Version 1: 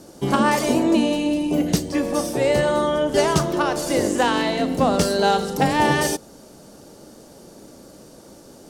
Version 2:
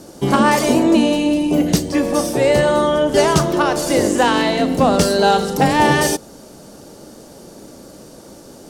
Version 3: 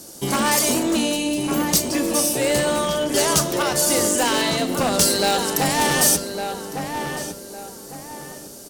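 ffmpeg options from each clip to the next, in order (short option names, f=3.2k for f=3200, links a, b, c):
-af "acontrast=27"
-filter_complex "[0:a]volume=9.5dB,asoftclip=hard,volume=-9.5dB,asplit=2[a][b];[b]adelay=1156,lowpass=f=2k:p=1,volume=-6dB,asplit=2[c][d];[d]adelay=1156,lowpass=f=2k:p=1,volume=0.35,asplit=2[e][f];[f]adelay=1156,lowpass=f=2k:p=1,volume=0.35,asplit=2[g][h];[h]adelay=1156,lowpass=f=2k:p=1,volume=0.35[i];[a][c][e][g][i]amix=inputs=5:normalize=0,crystalizer=i=4.5:c=0,volume=-7.5dB"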